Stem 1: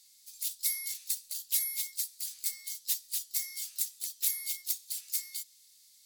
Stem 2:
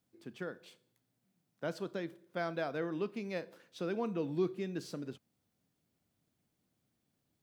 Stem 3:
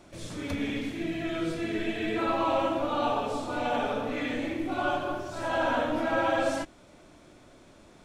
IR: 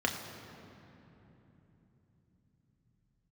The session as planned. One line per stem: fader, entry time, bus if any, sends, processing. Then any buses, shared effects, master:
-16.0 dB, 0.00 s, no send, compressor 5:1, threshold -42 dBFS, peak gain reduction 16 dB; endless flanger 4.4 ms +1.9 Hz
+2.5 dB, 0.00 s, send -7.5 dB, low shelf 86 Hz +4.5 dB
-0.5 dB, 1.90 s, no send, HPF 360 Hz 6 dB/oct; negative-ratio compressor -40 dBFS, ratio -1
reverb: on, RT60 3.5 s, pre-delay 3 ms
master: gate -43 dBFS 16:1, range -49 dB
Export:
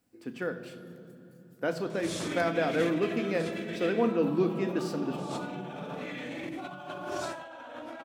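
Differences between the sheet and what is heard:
stem 1 -16.0 dB -> -26.5 dB; master: missing gate -43 dBFS 16:1, range -49 dB

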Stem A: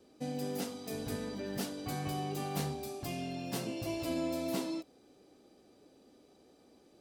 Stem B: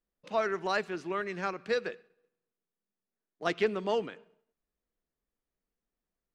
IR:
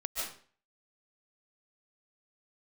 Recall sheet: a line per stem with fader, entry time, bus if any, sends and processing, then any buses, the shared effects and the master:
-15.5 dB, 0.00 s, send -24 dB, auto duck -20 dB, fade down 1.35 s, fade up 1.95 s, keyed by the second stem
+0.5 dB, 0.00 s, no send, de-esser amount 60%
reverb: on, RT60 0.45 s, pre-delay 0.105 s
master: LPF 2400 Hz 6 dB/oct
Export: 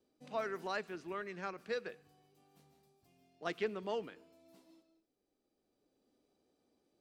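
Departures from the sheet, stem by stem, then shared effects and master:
stem B +0.5 dB -> -8.5 dB; master: missing LPF 2400 Hz 6 dB/oct

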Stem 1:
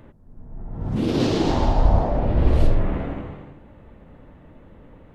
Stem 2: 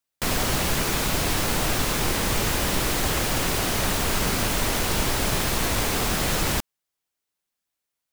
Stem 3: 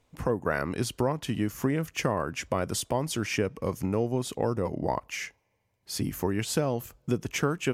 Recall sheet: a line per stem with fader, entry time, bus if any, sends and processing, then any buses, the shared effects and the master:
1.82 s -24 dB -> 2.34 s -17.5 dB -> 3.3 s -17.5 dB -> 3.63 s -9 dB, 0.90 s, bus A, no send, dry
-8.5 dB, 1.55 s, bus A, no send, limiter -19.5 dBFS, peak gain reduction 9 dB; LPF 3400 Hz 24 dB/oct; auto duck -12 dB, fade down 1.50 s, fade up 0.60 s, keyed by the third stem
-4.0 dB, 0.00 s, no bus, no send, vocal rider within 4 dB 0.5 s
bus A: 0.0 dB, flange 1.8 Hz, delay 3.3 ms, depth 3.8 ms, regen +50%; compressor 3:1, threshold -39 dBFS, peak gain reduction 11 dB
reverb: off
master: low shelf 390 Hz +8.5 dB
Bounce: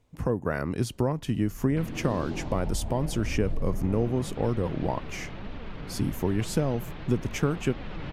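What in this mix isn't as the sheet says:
stem 1 -24.0 dB -> -15.0 dB; stem 2 -8.5 dB -> +3.0 dB; stem 3: missing vocal rider within 4 dB 0.5 s

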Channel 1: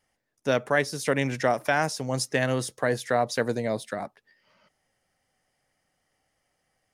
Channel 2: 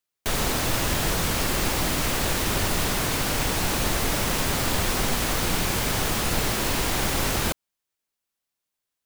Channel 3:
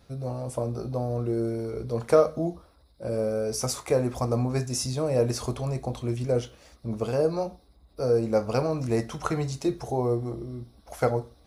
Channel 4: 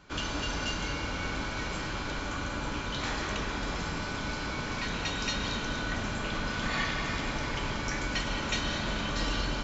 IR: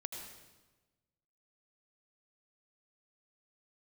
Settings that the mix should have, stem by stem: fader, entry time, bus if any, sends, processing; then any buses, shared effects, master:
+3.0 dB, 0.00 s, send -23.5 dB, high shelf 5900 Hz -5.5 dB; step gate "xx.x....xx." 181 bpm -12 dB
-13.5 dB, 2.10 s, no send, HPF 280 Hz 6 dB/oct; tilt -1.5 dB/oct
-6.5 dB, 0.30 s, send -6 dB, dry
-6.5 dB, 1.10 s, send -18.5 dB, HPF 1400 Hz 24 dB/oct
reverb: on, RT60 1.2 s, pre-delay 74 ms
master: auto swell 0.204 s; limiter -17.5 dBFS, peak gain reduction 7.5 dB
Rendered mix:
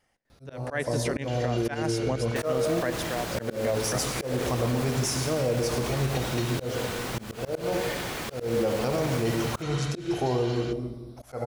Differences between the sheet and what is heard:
stem 2 -13.5 dB -> -7.0 dB; stem 3: send -6 dB -> 0 dB; reverb return +7.0 dB

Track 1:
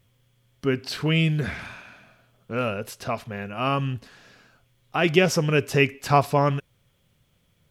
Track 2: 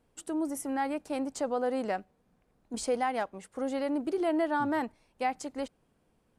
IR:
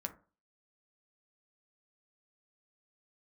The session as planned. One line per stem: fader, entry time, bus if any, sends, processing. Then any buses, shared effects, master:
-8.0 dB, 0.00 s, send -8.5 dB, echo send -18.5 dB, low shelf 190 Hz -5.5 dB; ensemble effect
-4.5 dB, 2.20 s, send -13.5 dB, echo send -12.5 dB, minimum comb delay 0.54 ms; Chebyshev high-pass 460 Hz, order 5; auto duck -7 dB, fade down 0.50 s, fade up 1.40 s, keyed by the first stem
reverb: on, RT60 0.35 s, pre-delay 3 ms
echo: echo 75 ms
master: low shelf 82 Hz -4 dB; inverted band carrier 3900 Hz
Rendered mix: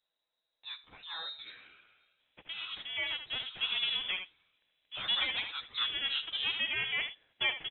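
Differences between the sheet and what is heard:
stem 1 -8.0 dB -> -17.0 dB; stem 2 -4.5 dB -> +5.5 dB

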